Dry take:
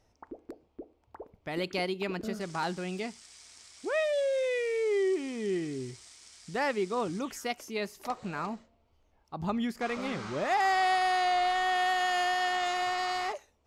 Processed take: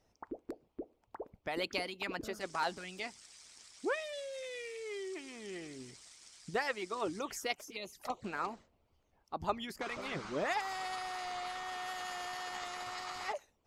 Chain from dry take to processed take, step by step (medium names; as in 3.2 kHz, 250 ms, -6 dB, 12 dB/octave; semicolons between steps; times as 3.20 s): 7.55–8.24 s: touch-sensitive flanger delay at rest 7.9 ms, full sweep at -32 dBFS; harmonic-percussive split harmonic -16 dB; trim +1 dB